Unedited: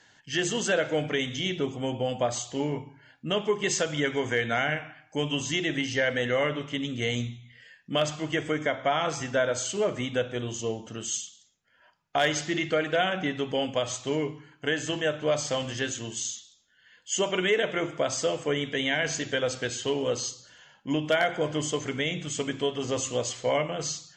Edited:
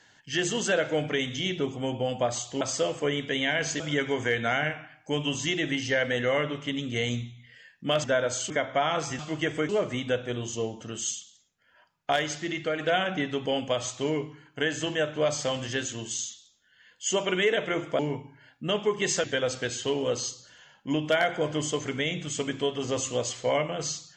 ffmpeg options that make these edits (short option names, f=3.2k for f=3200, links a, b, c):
-filter_complex "[0:a]asplit=11[a][b][c][d][e][f][g][h][i][j][k];[a]atrim=end=2.612[l];[b]atrim=start=18.048:end=19.242[m];[c]atrim=start=3.858:end=8.102[n];[d]atrim=start=9.288:end=9.752[o];[e]atrim=start=8.598:end=9.292[p];[f]atrim=start=8.098:end=8.602[q];[g]atrim=start=9.748:end=12.222[r];[h]atrim=start=12.218:end=12.852,asetpts=PTS-STARTPTS,volume=-3.5dB[s];[i]atrim=start=12.848:end=18.052[t];[j]atrim=start=2.608:end=3.862[u];[k]atrim=start=19.238[v];[l][m]acrossfade=d=0.004:c1=hsin:c2=hsin[w];[w][n]acrossfade=d=0.004:c1=hsin:c2=hsin[x];[x][o]acrossfade=d=0.004:c1=hsin:c2=hsin[y];[y][p]acrossfade=d=0.004:c1=hsin:c2=hsin[z];[z][q]acrossfade=d=0.004:c1=hsin:c2=hsin[aa];[aa][r]acrossfade=d=0.004:c1=hsin:c2=hsin[ab];[ab][s]acrossfade=d=0.004:c1=hsin:c2=hsin[ac];[ac][t]acrossfade=d=0.004:c1=hsin:c2=hsin[ad];[ad][u]acrossfade=d=0.004:c1=hsin:c2=hsin[ae];[ae][v]acrossfade=d=0.004:c1=hsin:c2=hsin"